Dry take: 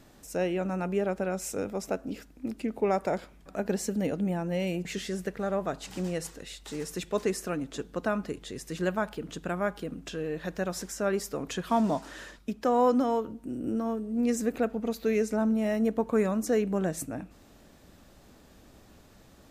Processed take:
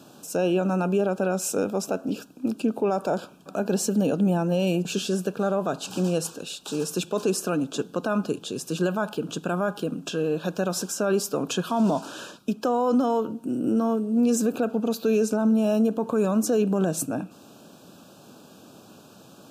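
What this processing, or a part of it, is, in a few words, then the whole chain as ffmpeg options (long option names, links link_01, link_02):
PA system with an anti-feedback notch: -af "highpass=frequency=130:width=0.5412,highpass=frequency=130:width=1.3066,asuperstop=centerf=2000:order=8:qfactor=2.5,alimiter=limit=-22.5dB:level=0:latency=1:release=32,volume=8dB"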